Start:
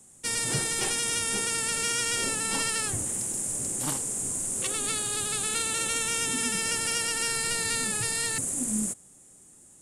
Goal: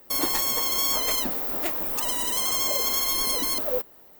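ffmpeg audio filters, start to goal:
-af "equalizer=f=5.4k:t=o:w=0.29:g=2.5,asetrate=103194,aresample=44100,volume=4.5dB"

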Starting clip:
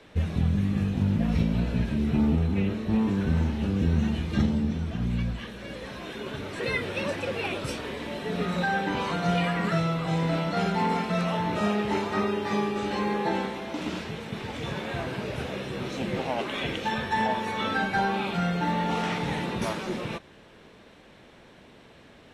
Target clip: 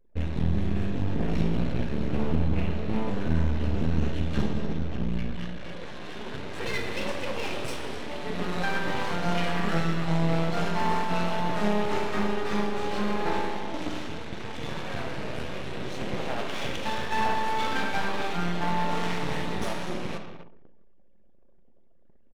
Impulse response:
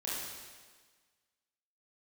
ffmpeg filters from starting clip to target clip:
-filter_complex "[0:a]aecho=1:1:253:0.224,aeval=exprs='max(val(0),0)':c=same,asplit=2[a][b];[1:a]atrim=start_sample=2205[c];[b][c]afir=irnorm=-1:irlink=0,volume=-5dB[d];[a][d]amix=inputs=2:normalize=0,anlmdn=0.1,volume=-1.5dB"

